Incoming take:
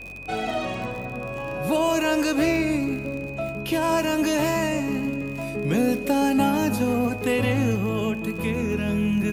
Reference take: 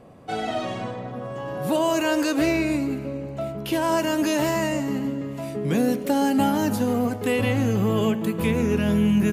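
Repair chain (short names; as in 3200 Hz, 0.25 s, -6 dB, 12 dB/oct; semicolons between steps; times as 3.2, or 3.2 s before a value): de-click; de-hum 46.4 Hz, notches 9; notch 2500 Hz, Q 30; gain 0 dB, from 7.75 s +3.5 dB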